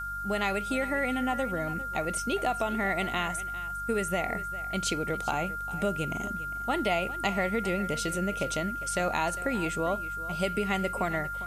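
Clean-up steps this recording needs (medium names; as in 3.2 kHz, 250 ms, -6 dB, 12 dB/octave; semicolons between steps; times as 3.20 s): de-hum 48.7 Hz, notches 4; band-stop 1.4 kHz, Q 30; noise print and reduce 30 dB; inverse comb 402 ms -16 dB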